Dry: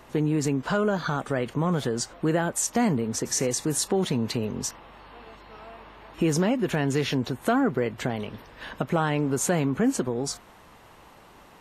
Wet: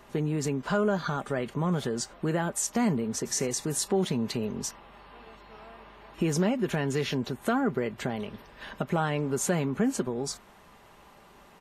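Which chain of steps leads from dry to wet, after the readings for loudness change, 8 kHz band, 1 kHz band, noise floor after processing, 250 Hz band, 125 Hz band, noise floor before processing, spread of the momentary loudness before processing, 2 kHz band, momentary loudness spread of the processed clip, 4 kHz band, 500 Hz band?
-3.0 dB, -3.0 dB, -3.0 dB, -55 dBFS, -3.5 dB, -3.0 dB, -52 dBFS, 10 LU, -3.0 dB, 10 LU, -3.0 dB, -3.0 dB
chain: comb 5 ms, depth 32%; trim -3.5 dB

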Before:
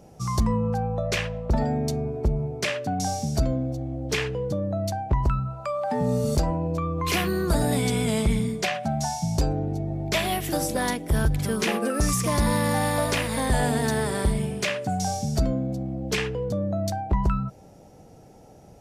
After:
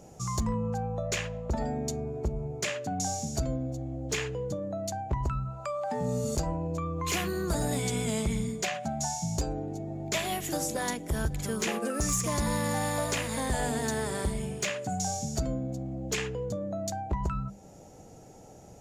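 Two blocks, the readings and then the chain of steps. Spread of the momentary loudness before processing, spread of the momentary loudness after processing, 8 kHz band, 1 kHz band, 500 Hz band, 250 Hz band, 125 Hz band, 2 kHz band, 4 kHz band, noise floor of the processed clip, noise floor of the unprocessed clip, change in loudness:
5 LU, 6 LU, -0.5 dB, -5.5 dB, -5.5 dB, -6.5 dB, -7.0 dB, -6.0 dB, -5.5 dB, -51 dBFS, -50 dBFS, -6.0 dB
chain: peaking EQ 6.9 kHz +13 dB 0.23 oct; hum notches 50/100/150/200/250 Hz; in parallel at +1.5 dB: compression 5:1, threshold -39 dBFS, peak gain reduction 18.5 dB; on the sum: overload inside the chain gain 13.5 dB; trim -7.5 dB

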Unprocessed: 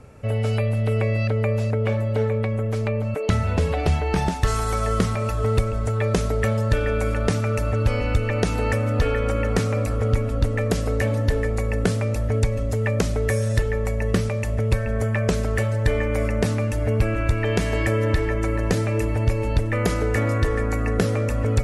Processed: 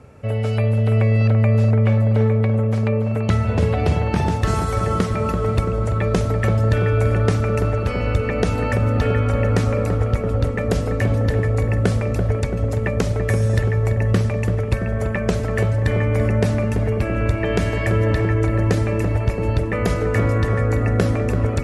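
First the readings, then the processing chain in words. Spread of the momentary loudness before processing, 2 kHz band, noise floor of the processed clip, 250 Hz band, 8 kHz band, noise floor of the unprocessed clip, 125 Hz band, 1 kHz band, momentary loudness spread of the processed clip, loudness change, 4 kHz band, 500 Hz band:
2 LU, +1.0 dB, -23 dBFS, +3.5 dB, -2.5 dB, -24 dBFS, +4.5 dB, +2.5 dB, 5 LU, +3.5 dB, -0.5 dB, +2.0 dB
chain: high-pass 55 Hz; treble shelf 4.7 kHz -5.5 dB; on a send: filtered feedback delay 336 ms, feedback 81%, low-pass 1.1 kHz, level -5 dB; on the sum: trim +1.5 dB

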